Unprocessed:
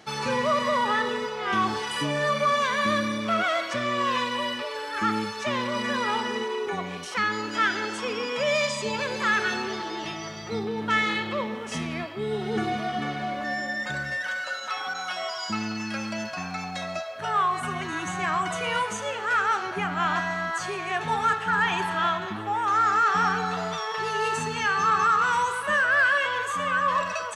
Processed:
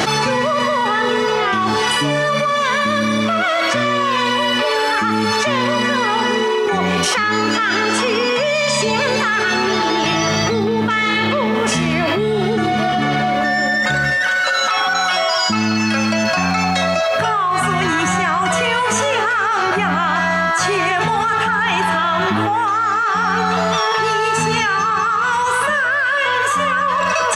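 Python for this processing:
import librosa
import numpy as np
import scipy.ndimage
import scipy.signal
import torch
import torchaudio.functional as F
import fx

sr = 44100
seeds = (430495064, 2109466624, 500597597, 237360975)

y = fx.env_flatten(x, sr, amount_pct=100)
y = y * librosa.db_to_amplitude(2.0)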